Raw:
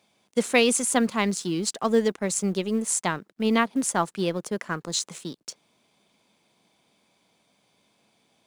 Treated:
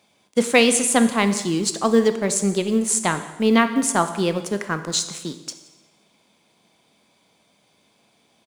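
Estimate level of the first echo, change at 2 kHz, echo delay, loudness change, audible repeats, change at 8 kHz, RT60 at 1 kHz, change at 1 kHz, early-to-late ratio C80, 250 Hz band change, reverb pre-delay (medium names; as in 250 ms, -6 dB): -23.5 dB, +5.0 dB, 177 ms, +5.0 dB, 1, +5.0 dB, 1.1 s, +5.0 dB, 13.0 dB, +5.5 dB, 13 ms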